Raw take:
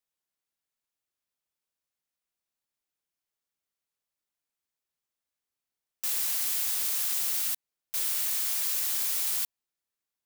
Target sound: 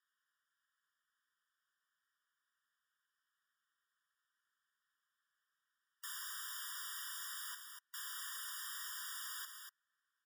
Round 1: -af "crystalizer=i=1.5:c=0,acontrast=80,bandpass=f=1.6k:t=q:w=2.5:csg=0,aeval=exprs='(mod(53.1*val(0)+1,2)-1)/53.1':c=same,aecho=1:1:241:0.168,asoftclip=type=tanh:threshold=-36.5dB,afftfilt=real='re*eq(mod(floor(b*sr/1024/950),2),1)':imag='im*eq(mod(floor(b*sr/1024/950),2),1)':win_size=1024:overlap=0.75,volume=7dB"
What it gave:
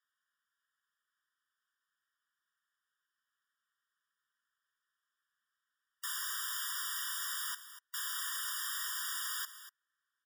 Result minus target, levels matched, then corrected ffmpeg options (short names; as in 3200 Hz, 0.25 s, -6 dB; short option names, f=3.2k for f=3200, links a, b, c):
soft clip: distortion -12 dB
-af "crystalizer=i=1.5:c=0,acontrast=80,bandpass=f=1.6k:t=q:w=2.5:csg=0,aeval=exprs='(mod(53.1*val(0)+1,2)-1)/53.1':c=same,aecho=1:1:241:0.168,asoftclip=type=tanh:threshold=-48.5dB,afftfilt=real='re*eq(mod(floor(b*sr/1024/950),2),1)':imag='im*eq(mod(floor(b*sr/1024/950),2),1)':win_size=1024:overlap=0.75,volume=7dB"